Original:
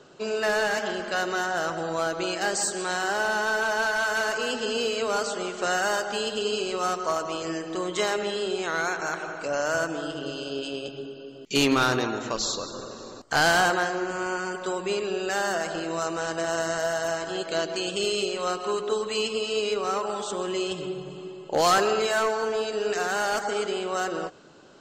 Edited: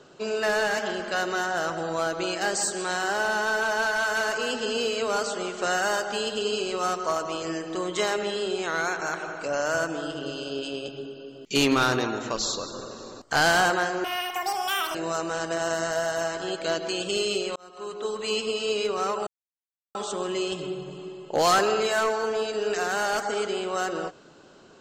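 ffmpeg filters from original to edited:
ffmpeg -i in.wav -filter_complex "[0:a]asplit=5[link_01][link_02][link_03][link_04][link_05];[link_01]atrim=end=14.044[link_06];[link_02]atrim=start=14.04:end=15.82,asetpts=PTS-STARTPTS,asetrate=86436,aresample=44100[link_07];[link_03]atrim=start=15.816:end=18.43,asetpts=PTS-STARTPTS,afade=type=out:start_time=2.61:duration=0.004:curve=hsin[link_08];[link_04]atrim=start=18.43:end=20.14,asetpts=PTS-STARTPTS,afade=type=in:duration=0.8,afade=type=out:start_time=1.706:duration=0.004:curve=hsin,apad=pad_dur=0.68[link_09];[link_05]atrim=start=20.14,asetpts=PTS-STARTPTS,afade=type=in:duration=0.004:curve=hsin[link_10];[link_06][link_07]acrossfade=duration=0.004:curve1=hsin:curve2=hsin[link_11];[link_08][link_09][link_10]concat=n=3:v=0:a=1[link_12];[link_11][link_12]acrossfade=duration=0.004:curve1=hsin:curve2=hsin" out.wav

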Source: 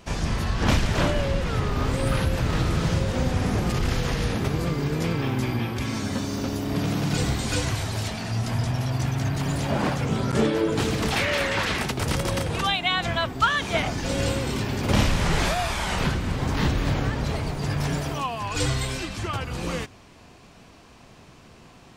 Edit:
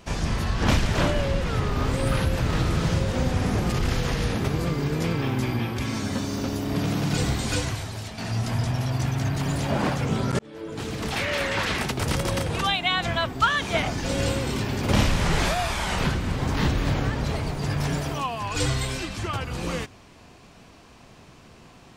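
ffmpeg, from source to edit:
ffmpeg -i in.wav -filter_complex "[0:a]asplit=3[link_01][link_02][link_03];[link_01]atrim=end=8.18,asetpts=PTS-STARTPTS,afade=type=out:start_time=7.54:duration=0.64:curve=qua:silence=0.446684[link_04];[link_02]atrim=start=8.18:end=10.39,asetpts=PTS-STARTPTS,afade=type=in:duration=0.004:curve=hsin:silence=0.446684,afade=type=out:start_time=2.206:duration=0.004:curve=hsin[link_05];[link_03]atrim=start=10.39,asetpts=PTS-STARTPTS,afade=type=in:duration=1.64:curve=qsin[link_06];[link_04][link_05][link_06]concat=n=3:v=0:a=1" out.wav

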